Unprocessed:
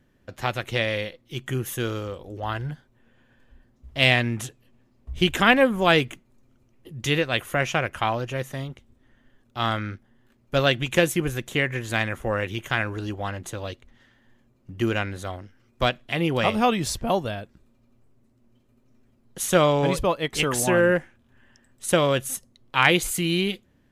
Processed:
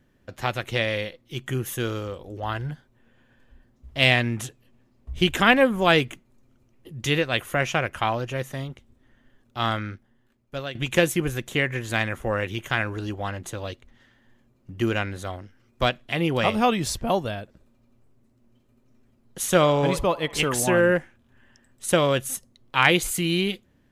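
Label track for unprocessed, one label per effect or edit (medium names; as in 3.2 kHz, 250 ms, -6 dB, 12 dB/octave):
9.690000	10.750000	fade out, to -15.5 dB
17.410000	20.510000	band-passed feedback delay 65 ms, feedback 68%, level -17.5 dB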